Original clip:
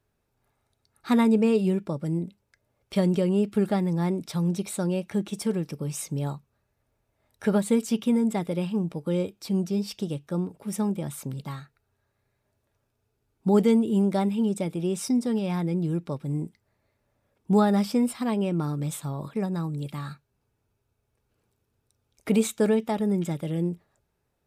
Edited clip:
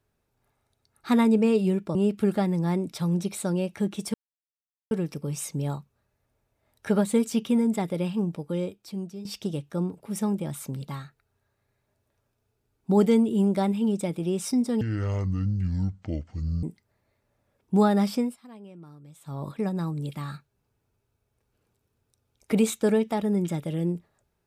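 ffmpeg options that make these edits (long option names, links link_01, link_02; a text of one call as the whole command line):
ffmpeg -i in.wav -filter_complex "[0:a]asplit=8[link_01][link_02][link_03][link_04][link_05][link_06][link_07][link_08];[link_01]atrim=end=1.952[link_09];[link_02]atrim=start=3.288:end=5.48,asetpts=PTS-STARTPTS,afade=type=out:start_time=2.188:duration=0.004:curve=hsin,apad=pad_dur=0.77[link_10];[link_03]atrim=start=5.48:end=9.82,asetpts=PTS-STARTPTS,afade=type=in:duration=0.004:curve=hsin,afade=type=out:start_time=3.32:duration=1.02:silence=0.199526[link_11];[link_04]atrim=start=9.82:end=15.384,asetpts=PTS-STARTPTS,afade=type=in:duration=0.004:curve=hsin:silence=0.199526[link_12];[link_05]atrim=start=15.38:end=16.4,asetpts=PTS-STARTPTS,asetrate=24696,aresample=44100[link_13];[link_06]atrim=start=16.396:end=18.13,asetpts=PTS-STARTPTS,afade=type=out:start_time=1.524:duration=0.21:silence=0.105925[link_14];[link_07]atrim=start=18.13:end=18.97,asetpts=PTS-STARTPTS,volume=-19.5dB[link_15];[link_08]atrim=start=18.97,asetpts=PTS-STARTPTS,afade=type=in:duration=0.21:silence=0.105925[link_16];[link_10][link_11][link_12]concat=n=3:v=0:a=1[link_17];[link_09][link_17]acrossfade=duration=0.004:curve1=hsin:curve2=hsin[link_18];[link_18][link_13]acrossfade=duration=0.004:curve1=hsin:curve2=hsin[link_19];[link_14][link_15][link_16]concat=n=3:v=0:a=1[link_20];[link_19][link_20]acrossfade=duration=0.004:curve1=hsin:curve2=hsin" out.wav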